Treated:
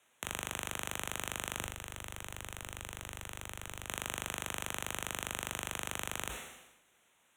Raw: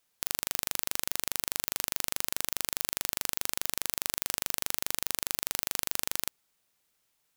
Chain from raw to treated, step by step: bass shelf 180 Hz -7 dB; saturation -13 dBFS, distortion -14 dB; frequency shift +51 Hz; Butterworth band-stop 4.8 kHz, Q 1.7; 1.60–3.87 s: compressor with a negative ratio -51 dBFS, ratio -1; distance through air 55 m; reverberation, pre-delay 3 ms, DRR 16.5 dB; decay stretcher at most 57 dB/s; trim +11.5 dB

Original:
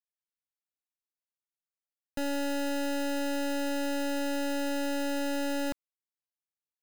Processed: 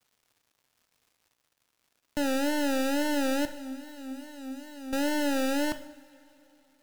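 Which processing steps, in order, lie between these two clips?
wow and flutter 110 cents; 3.45–4.93 s: feedback comb 260 Hz, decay 0.44 s, harmonics odd, mix 90%; crackle 270 per s -59 dBFS; two-slope reverb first 0.63 s, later 3.5 s, from -18 dB, DRR 9.5 dB; trim +3.5 dB

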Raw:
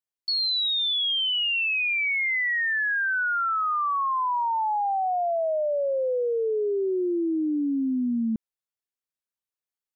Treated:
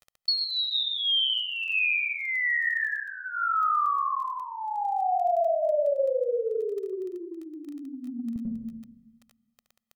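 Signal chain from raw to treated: reverberation RT60 0.90 s, pre-delay 90 ms, DRR 0.5 dB; peak limiter -14 dBFS, peak gain reduction 6 dB; compression 2.5:1, threshold -23 dBFS, peak gain reduction 5 dB; 2.31–4.46 s: low-pass 3.1 kHz 6 dB/octave; crackle 13 per s -34 dBFS; comb 1.6 ms, depth 76%; trim -4.5 dB

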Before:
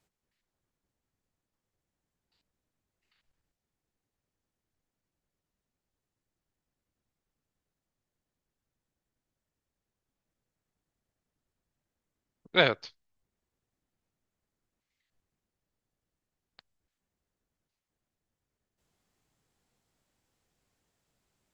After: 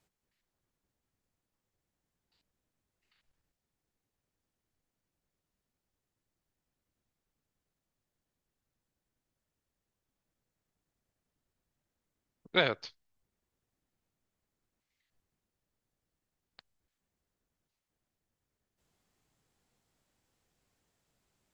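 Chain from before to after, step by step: compression 4:1, threshold -22 dBFS, peak gain reduction 6 dB

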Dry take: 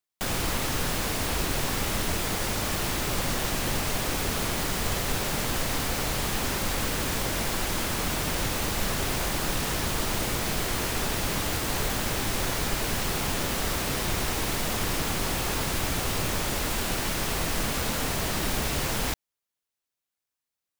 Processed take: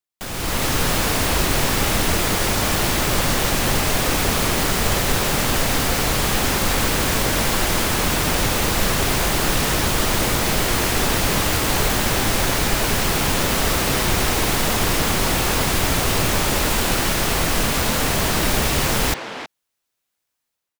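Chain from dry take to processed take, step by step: level rider gain up to 11.5 dB; speakerphone echo 320 ms, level -7 dB; trim -2.5 dB

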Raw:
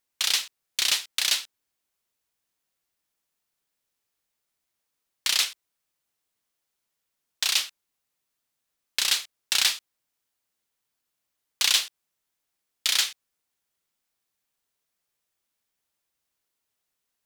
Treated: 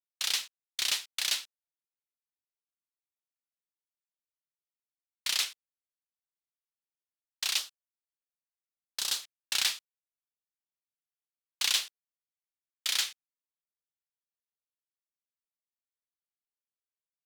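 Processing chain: gate -32 dBFS, range -20 dB; 7.58–9.23 s: peaking EQ 2.2 kHz -8.5 dB 0.89 oct; trim -6 dB

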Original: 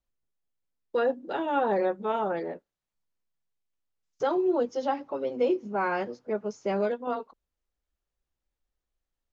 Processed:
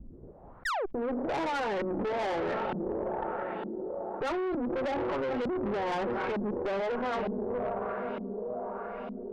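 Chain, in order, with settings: level-controlled noise filter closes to 1.2 kHz; painted sound fall, 0.65–0.86 s, 350–2000 Hz -35 dBFS; echo that smears into a reverb 456 ms, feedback 46%, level -14 dB; peak limiter -26.5 dBFS, peak gain reduction 11.5 dB; LFO low-pass saw up 1.1 Hz 210–3200 Hz; valve stage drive 37 dB, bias 0.55; level flattener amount 70%; trim +7.5 dB

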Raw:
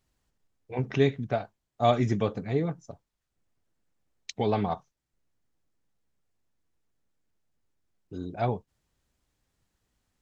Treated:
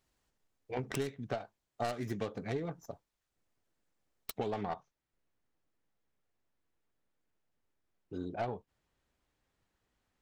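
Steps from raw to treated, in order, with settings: tracing distortion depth 0.48 ms; tone controls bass -6 dB, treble -1 dB, from 4.38 s treble -8 dB; compression 12:1, threshold -32 dBFS, peak gain reduction 15.5 dB

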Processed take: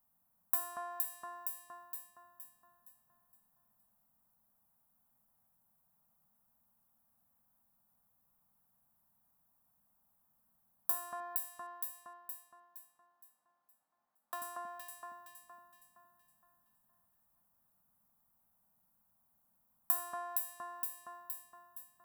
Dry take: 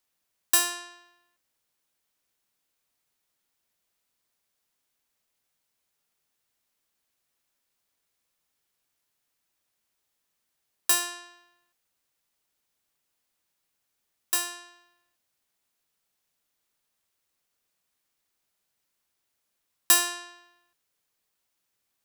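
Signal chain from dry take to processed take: 11.20–14.42 s: three-band isolator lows -22 dB, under 270 Hz, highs -21 dB, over 5 kHz; echo whose repeats swap between lows and highs 233 ms, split 1.9 kHz, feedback 62%, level -3.5 dB; compression 2.5:1, threshold -40 dBFS, peak gain reduction 16.5 dB; FFT filter 110 Hz 0 dB, 220 Hz +5 dB, 360 Hz -17 dB, 760 Hz -1 dB, 1.1 kHz -4 dB, 2.5 kHz -24 dB, 5.8 kHz -23 dB, 13 kHz -1 dB; trim +6.5 dB

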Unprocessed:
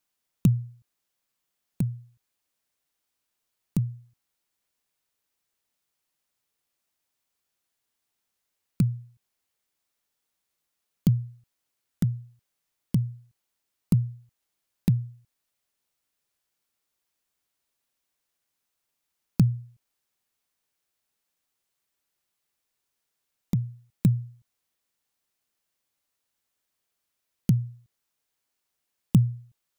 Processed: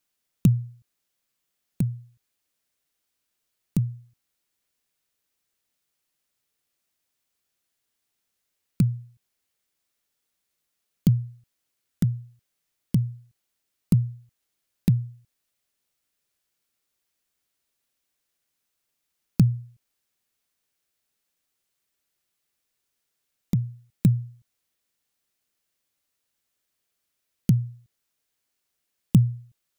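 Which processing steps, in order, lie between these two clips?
peaking EQ 920 Hz -4 dB 0.88 oct; trim +2 dB

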